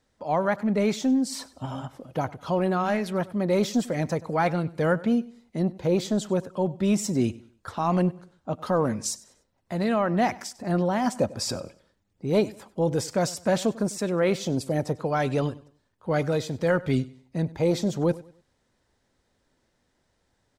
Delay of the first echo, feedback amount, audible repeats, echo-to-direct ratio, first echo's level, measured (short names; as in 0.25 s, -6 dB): 97 ms, 33%, 2, -19.5 dB, -20.0 dB